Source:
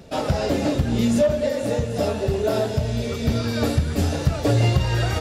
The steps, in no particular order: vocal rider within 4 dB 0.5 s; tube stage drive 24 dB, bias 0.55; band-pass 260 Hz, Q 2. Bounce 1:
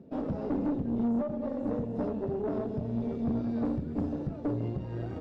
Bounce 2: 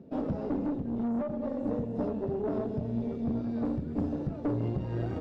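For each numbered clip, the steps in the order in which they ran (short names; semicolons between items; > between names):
vocal rider > band-pass > tube stage; band-pass > tube stage > vocal rider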